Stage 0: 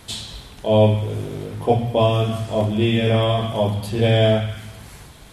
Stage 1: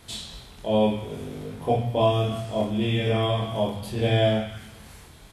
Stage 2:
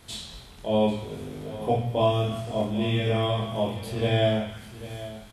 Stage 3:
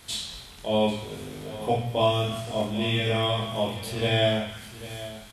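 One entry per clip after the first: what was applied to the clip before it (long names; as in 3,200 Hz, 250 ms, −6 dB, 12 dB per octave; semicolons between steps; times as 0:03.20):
ambience of single reflections 24 ms −3.5 dB, 51 ms −8 dB; level −7 dB
single-tap delay 793 ms −15 dB; level −1.5 dB
tilt shelving filter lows −4 dB, about 1,200 Hz; level +2 dB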